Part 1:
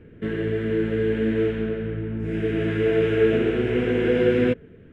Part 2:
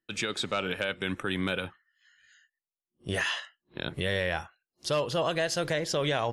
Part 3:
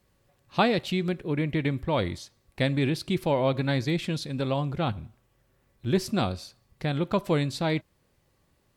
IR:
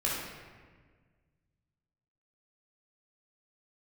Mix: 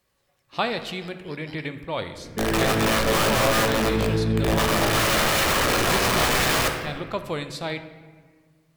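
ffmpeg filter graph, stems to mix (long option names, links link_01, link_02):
-filter_complex "[0:a]aeval=exprs='(mod(10*val(0)+1,2)-1)/10':channel_layout=same,adelay=2150,volume=-1.5dB,asplit=2[link_01][link_02];[link_02]volume=-6.5dB[link_03];[1:a]highpass=1500,aeval=exprs='val(0)*sin(2*PI*1600*n/s)':channel_layout=same,volume=-10dB[link_04];[2:a]lowshelf=frequency=410:gain=-10.5,volume=-1dB,asplit=3[link_05][link_06][link_07];[link_06]volume=-14.5dB[link_08];[link_07]apad=whole_len=279143[link_09];[link_04][link_09]sidechaingate=range=-33dB:threshold=-57dB:ratio=16:detection=peak[link_10];[3:a]atrim=start_sample=2205[link_11];[link_03][link_08]amix=inputs=2:normalize=0[link_12];[link_12][link_11]afir=irnorm=-1:irlink=0[link_13];[link_01][link_10][link_05][link_13]amix=inputs=4:normalize=0"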